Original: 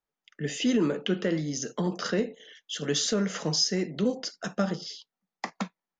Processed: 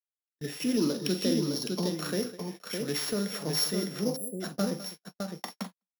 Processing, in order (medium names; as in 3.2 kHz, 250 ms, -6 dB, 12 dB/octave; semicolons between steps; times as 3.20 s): sorted samples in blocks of 8 samples; multi-tap echo 44/205/609 ms -11/-14.5/-4.5 dB; gate -36 dBFS, range -43 dB; 0.77–1.95 s: graphic EQ 250/2000/4000 Hz +4/-5/+8 dB; 4.16–4.41 s: spectral selection erased 730–7400 Hz; trim -4.5 dB